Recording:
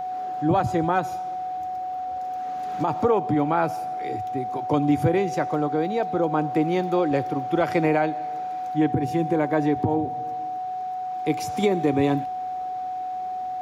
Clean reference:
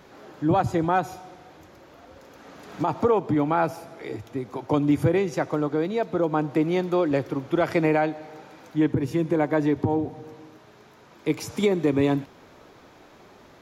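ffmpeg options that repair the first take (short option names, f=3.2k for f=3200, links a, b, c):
-af "bandreject=f=740:w=30"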